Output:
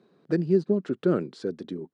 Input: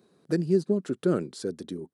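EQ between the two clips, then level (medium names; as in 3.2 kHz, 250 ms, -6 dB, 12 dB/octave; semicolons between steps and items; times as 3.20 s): band-pass 110–3500 Hz; +1.5 dB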